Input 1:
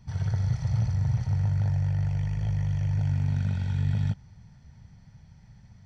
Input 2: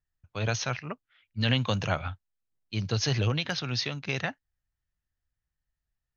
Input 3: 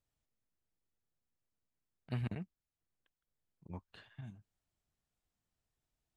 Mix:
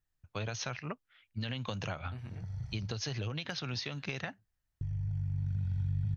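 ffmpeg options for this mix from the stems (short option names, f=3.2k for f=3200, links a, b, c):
-filter_complex "[0:a]asubboost=boost=8:cutoff=150,adelay=2100,volume=-5.5dB,asplit=3[a][b][c];[a]atrim=end=2.94,asetpts=PTS-STARTPTS,afade=t=out:st=2.936:d=0.004:c=hsin[d];[b]atrim=start=2.94:end=4.81,asetpts=PTS-STARTPTS,volume=0[e];[c]atrim=start=4.81,asetpts=PTS-STARTPTS,afade=t=in:d=0.004:c=hsin[f];[d][e][f]concat=n=3:v=0:a=1[g];[1:a]acompressor=threshold=-28dB:ratio=6,volume=0dB,asplit=2[h][i];[2:a]flanger=delay=20:depth=5.9:speed=0.33,volume=-4.5dB[j];[i]apad=whole_len=350805[k];[g][k]sidechaincompress=threshold=-52dB:ratio=3:attack=32:release=936[l];[l][h][j]amix=inputs=3:normalize=0,acompressor=threshold=-35dB:ratio=3"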